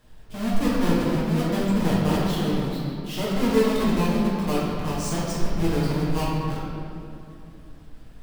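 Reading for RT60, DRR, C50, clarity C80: 2.7 s, −8.0 dB, −2.0 dB, 0.0 dB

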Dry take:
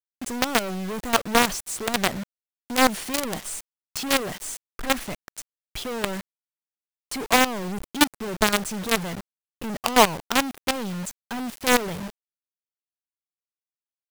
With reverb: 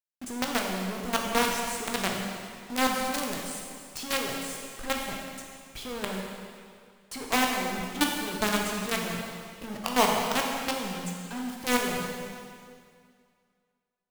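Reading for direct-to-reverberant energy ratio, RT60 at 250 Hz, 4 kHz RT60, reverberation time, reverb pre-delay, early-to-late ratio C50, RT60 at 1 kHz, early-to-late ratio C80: −0.5 dB, 2.2 s, 2.1 s, 2.2 s, 6 ms, 1.5 dB, 2.1 s, 3.0 dB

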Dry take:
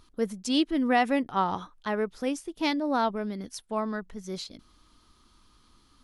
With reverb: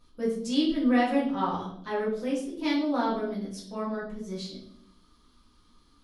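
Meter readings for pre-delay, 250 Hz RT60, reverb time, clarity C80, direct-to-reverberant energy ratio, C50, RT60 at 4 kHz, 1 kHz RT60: 4 ms, 1.2 s, 0.70 s, 8.5 dB, −7.5 dB, 4.5 dB, 0.55 s, 0.60 s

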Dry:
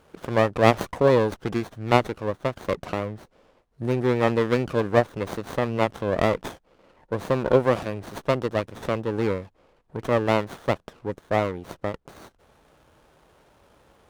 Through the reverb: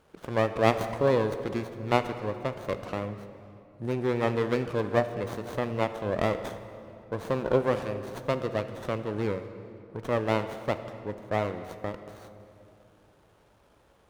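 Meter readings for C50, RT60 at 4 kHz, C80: 10.5 dB, 1.8 s, 11.0 dB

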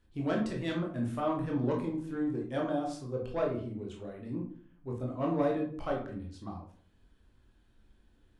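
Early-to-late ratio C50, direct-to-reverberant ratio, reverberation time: 6.0 dB, −1.5 dB, 0.50 s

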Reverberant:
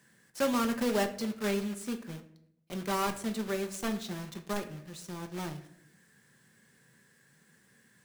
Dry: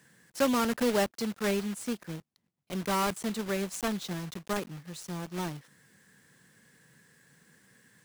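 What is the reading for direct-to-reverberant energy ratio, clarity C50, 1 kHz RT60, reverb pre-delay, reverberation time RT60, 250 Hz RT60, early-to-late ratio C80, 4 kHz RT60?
6.0 dB, 12.0 dB, 0.60 s, 5 ms, 0.70 s, 0.90 s, 15.5 dB, 0.45 s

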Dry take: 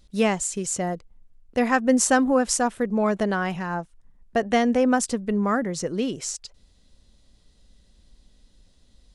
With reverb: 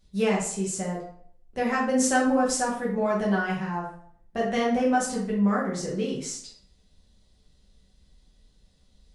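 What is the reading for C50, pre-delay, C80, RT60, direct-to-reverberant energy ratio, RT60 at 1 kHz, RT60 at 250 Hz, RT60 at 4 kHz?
4.0 dB, 5 ms, 8.5 dB, 0.60 s, −5.5 dB, 0.60 s, 0.60 s, 0.45 s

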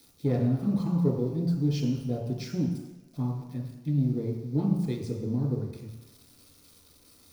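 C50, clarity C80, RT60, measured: 3.5 dB, 6.0 dB, 1.1 s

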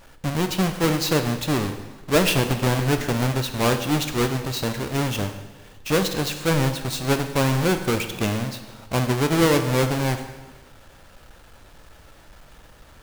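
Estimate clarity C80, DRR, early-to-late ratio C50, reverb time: 11.0 dB, 7.0 dB, 9.0 dB, 1.3 s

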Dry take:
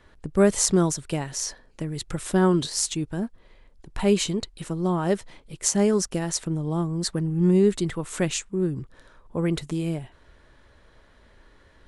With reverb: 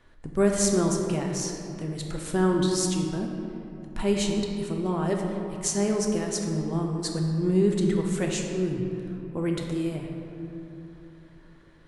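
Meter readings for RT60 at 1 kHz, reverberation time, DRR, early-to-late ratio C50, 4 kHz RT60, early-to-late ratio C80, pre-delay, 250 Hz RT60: 2.7 s, 3.0 s, 1.0 dB, 3.0 dB, 1.5 s, 4.0 dB, 3 ms, 3.9 s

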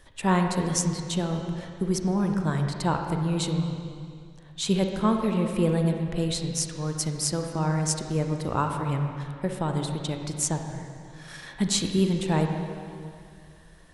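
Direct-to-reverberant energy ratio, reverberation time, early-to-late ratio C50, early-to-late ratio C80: 3.5 dB, 2.2 s, 4.0 dB, 5.0 dB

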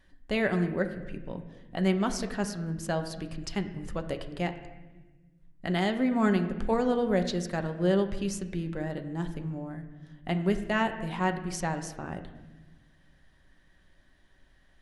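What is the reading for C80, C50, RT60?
12.0 dB, 10.5 dB, 1.2 s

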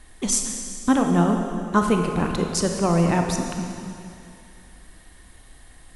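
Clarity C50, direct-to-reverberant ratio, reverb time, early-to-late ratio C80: 4.0 dB, 3.0 dB, 2.6 s, 5.0 dB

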